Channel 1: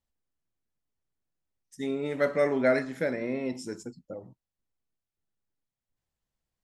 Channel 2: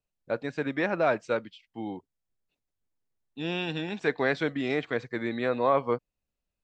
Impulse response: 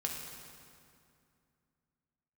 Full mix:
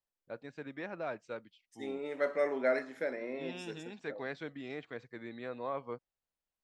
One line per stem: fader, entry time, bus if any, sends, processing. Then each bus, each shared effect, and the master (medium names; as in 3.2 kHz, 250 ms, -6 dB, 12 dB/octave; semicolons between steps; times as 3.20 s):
-5.0 dB, 0.00 s, no send, high-pass 360 Hz 12 dB/octave; treble shelf 5.5 kHz -9 dB
-14.0 dB, 0.00 s, no send, none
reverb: none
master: none